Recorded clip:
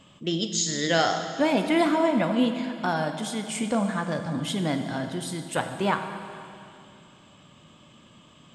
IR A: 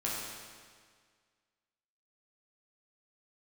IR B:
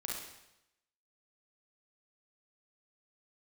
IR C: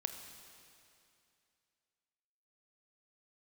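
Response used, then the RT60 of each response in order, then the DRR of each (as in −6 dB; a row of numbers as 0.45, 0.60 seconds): C; 1.8, 0.85, 2.6 seconds; −6.0, −3.5, 6.5 decibels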